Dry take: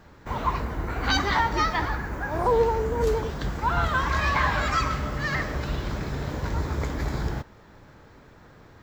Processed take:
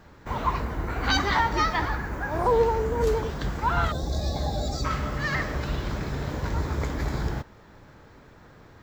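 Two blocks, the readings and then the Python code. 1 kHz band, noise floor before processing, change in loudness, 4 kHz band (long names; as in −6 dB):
−1.5 dB, −51 dBFS, −1.0 dB, −0.5 dB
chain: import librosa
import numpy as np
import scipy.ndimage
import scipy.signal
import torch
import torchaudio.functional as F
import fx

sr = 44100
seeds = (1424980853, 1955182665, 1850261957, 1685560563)

y = fx.spec_box(x, sr, start_s=3.92, length_s=0.93, low_hz=850.0, high_hz=3400.0, gain_db=-23)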